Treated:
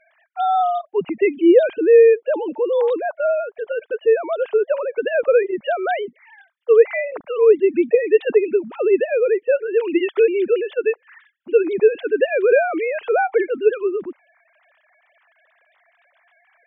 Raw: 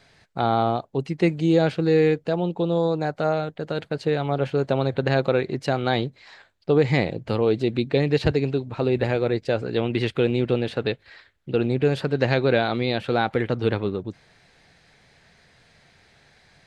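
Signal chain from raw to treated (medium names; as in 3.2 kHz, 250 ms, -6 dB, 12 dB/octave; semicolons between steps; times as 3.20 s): formants replaced by sine waves; trim +5 dB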